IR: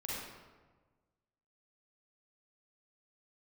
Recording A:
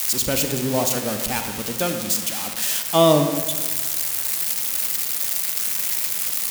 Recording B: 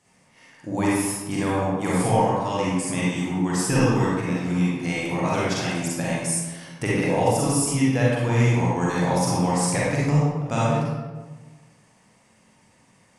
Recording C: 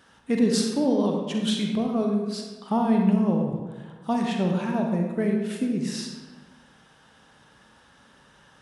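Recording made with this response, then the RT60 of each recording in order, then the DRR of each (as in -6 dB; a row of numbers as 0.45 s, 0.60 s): B; 1.4 s, 1.4 s, 1.4 s; 5.5 dB, -7.0 dB, 1.5 dB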